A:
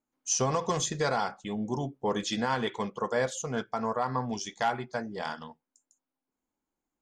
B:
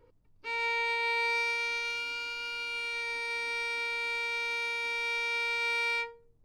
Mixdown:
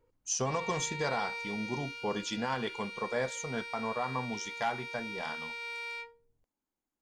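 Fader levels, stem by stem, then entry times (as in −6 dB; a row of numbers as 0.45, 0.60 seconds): −4.5, −9.5 decibels; 0.00, 0.00 seconds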